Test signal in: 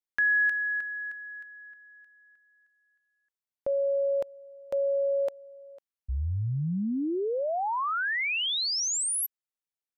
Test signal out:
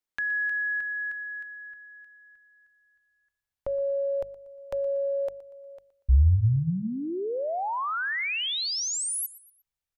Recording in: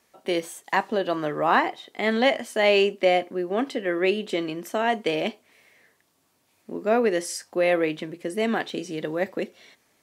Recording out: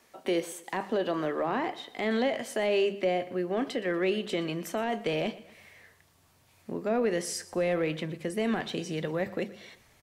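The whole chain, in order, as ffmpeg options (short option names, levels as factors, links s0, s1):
-filter_complex "[0:a]highshelf=f=4200:g=-3,bandreject=f=50:t=h:w=6,bandreject=f=100:t=h:w=6,bandreject=f=150:t=h:w=6,bandreject=f=200:t=h:w=6,acrossover=split=470[s0][s1];[s1]acompressor=threshold=0.0447:ratio=10:attack=0.31:release=42:knee=2.83:detection=peak[s2];[s0][s2]amix=inputs=2:normalize=0,asubboost=boost=9:cutoff=92,asplit=2[s3][s4];[s4]acompressor=threshold=0.0178:ratio=6:attack=2:release=459:knee=1:detection=rms,volume=1.33[s5];[s3][s5]amix=inputs=2:normalize=0,aecho=1:1:119|238|357:0.126|0.0491|0.0191,volume=0.708"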